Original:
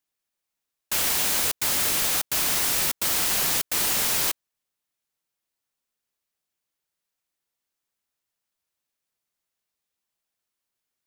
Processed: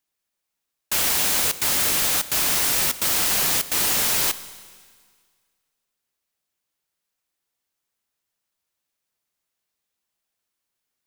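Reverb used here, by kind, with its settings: Schroeder reverb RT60 1.8 s, combs from 31 ms, DRR 14.5 dB; gain +2.5 dB

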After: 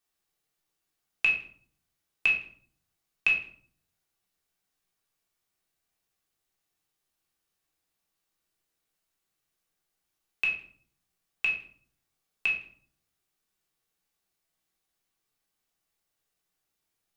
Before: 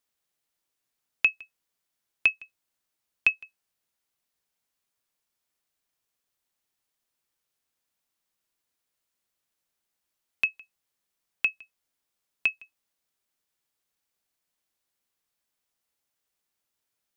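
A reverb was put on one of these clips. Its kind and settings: shoebox room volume 570 m³, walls furnished, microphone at 3.6 m; gain -4 dB

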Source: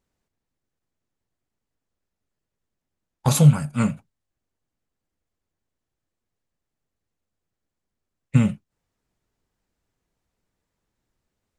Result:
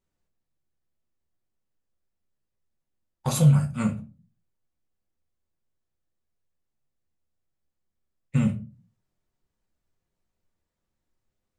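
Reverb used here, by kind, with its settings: shoebox room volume 130 m³, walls furnished, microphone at 1 m; gain -7 dB

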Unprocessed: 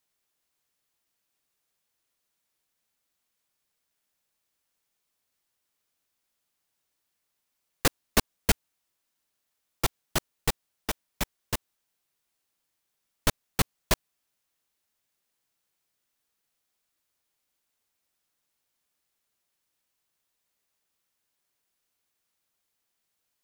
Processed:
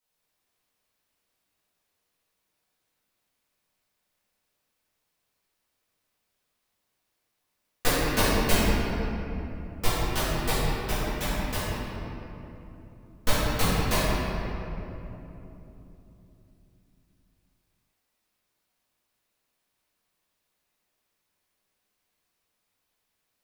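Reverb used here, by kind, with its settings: shoebox room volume 160 m³, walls hard, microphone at 1.9 m; gain -8 dB

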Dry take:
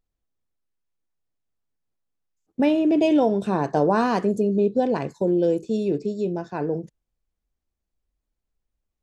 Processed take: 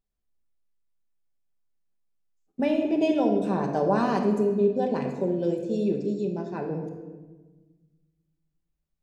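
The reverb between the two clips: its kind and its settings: shoebox room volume 980 m³, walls mixed, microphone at 1.2 m; gain -6 dB

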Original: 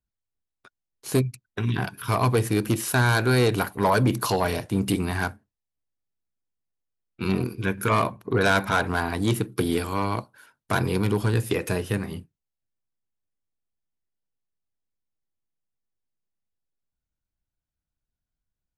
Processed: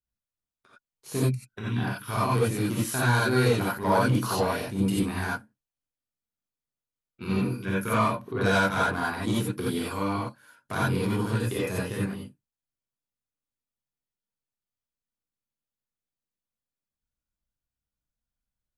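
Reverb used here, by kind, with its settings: non-linear reverb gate 0.11 s rising, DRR -6.5 dB; gain -10 dB

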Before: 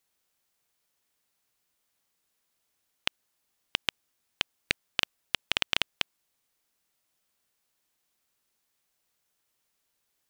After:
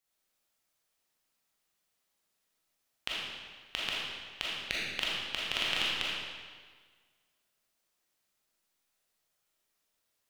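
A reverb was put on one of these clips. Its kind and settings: digital reverb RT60 1.6 s, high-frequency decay 0.9×, pre-delay 0 ms, DRR -6.5 dB; gain -8.5 dB

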